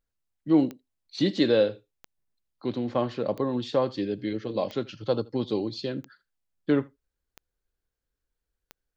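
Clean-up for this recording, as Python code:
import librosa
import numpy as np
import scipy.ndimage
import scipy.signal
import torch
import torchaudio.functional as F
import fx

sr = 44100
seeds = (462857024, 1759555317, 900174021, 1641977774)

y = fx.fix_declick_ar(x, sr, threshold=10.0)
y = fx.fix_echo_inverse(y, sr, delay_ms=79, level_db=-23.0)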